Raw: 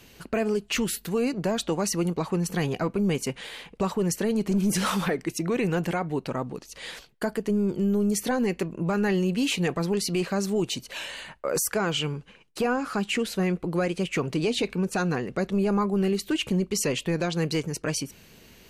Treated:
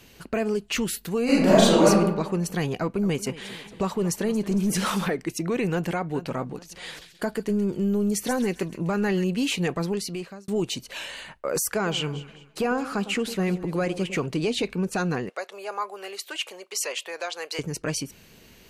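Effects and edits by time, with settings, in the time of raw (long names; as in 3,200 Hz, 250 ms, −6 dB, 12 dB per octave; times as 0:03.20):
0:01.24–0:01.86: thrown reverb, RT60 1 s, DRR −10.5 dB
0:02.77–0:05.07: feedback echo with a swinging delay time 227 ms, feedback 61%, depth 107 cents, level −17 dB
0:05.71–0:06.15: delay throw 420 ms, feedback 30%, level −14 dB
0:06.88–0:09.24: delay with a high-pass on its return 133 ms, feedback 35%, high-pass 2,300 Hz, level −8 dB
0:09.82–0:10.48: fade out
0:11.75–0:14.26: delay that swaps between a low-pass and a high-pass 105 ms, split 930 Hz, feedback 56%, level −11.5 dB
0:15.29–0:17.59: high-pass filter 560 Hz 24 dB per octave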